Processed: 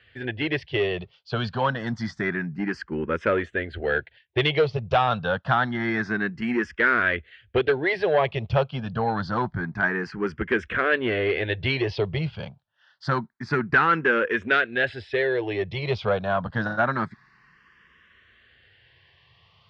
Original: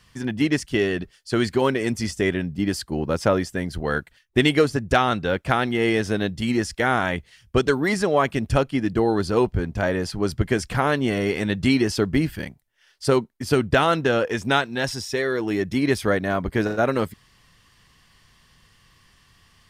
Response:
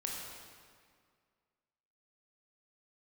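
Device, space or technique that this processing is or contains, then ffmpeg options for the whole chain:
barber-pole phaser into a guitar amplifier: -filter_complex "[0:a]asplit=2[link_01][link_02];[link_02]afreqshift=0.27[link_03];[link_01][link_03]amix=inputs=2:normalize=1,asoftclip=type=tanh:threshold=-15.5dB,highpass=96,equalizer=frequency=190:width_type=q:width=4:gain=-4,equalizer=frequency=280:width_type=q:width=4:gain=-9,equalizer=frequency=1600:width_type=q:width=4:gain=6,lowpass=frequency=3700:width=0.5412,lowpass=frequency=3700:width=1.3066,volume=3dB"

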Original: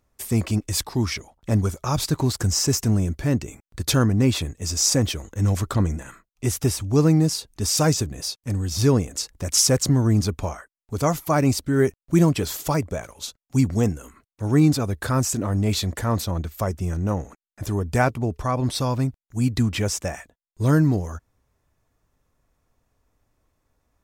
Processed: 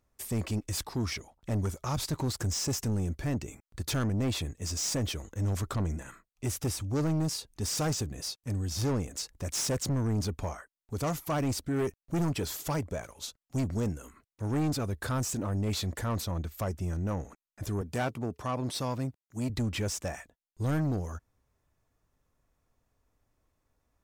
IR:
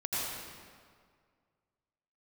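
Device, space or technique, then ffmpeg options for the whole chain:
saturation between pre-emphasis and de-emphasis: -filter_complex "[0:a]highshelf=frequency=5700:gain=7,asoftclip=type=tanh:threshold=-19.5dB,highshelf=frequency=5700:gain=-7,asettb=1/sr,asplit=3[link_01][link_02][link_03];[link_01]atrim=end=17.814[link_04];[link_02]atrim=start=17.81:end=19.5,asetpts=PTS-STARTPTS,afade=type=in:duration=0.004:curve=qsin,afade=type=out:start_time=1.686:duration=0.004:curve=qsin,highpass=130[link_05];[link_03]atrim=start=19.496[link_06];[link_04][link_05]acrossfade=duration=0.004:curve1=hsin:curve2=qsin[link_07];[link_07][link_06]acrossfade=duration=0.004:curve1=qsin:curve2=hsin,volume=-5.5dB"

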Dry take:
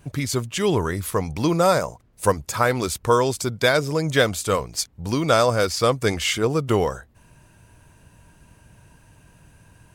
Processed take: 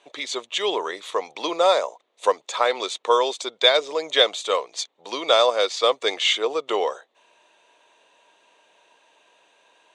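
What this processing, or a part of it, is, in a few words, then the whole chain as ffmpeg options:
phone speaker on a table: -af "highpass=frequency=450:width=0.5412,highpass=frequency=450:width=1.3066,equalizer=frequency=1500:width_type=q:width=4:gain=-8,equalizer=frequency=3600:width_type=q:width=4:gain=10,equalizer=frequency=5100:width_type=q:width=4:gain=-10,lowpass=frequency=6400:width=0.5412,lowpass=frequency=6400:width=1.3066,volume=1.5dB"

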